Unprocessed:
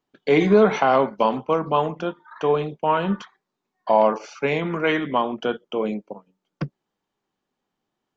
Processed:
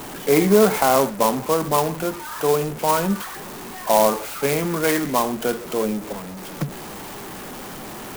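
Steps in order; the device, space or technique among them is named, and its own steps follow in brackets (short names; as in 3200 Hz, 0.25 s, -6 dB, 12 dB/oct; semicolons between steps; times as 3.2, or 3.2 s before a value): early CD player with a faulty converter (zero-crossing step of -28 dBFS; clock jitter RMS 0.064 ms)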